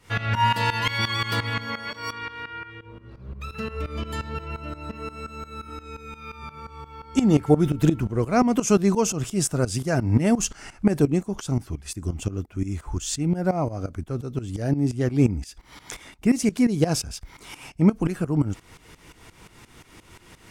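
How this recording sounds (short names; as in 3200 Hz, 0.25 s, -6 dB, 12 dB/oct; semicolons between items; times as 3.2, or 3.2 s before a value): tremolo saw up 5.7 Hz, depth 85%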